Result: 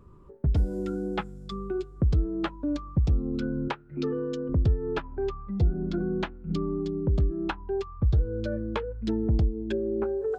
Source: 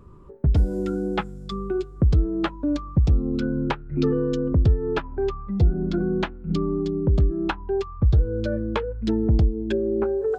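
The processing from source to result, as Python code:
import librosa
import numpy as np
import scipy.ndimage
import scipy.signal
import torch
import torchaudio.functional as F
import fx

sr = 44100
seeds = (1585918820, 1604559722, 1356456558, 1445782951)

y = fx.highpass(x, sr, hz=270.0, slope=6, at=(3.68, 4.49))
y = y * librosa.db_to_amplitude(-5.0)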